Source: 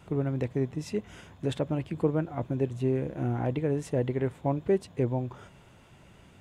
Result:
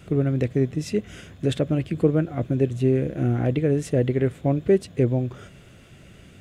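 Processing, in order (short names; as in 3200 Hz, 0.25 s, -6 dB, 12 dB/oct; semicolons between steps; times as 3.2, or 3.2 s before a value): bell 920 Hz -15 dB 0.51 oct; gain +7.5 dB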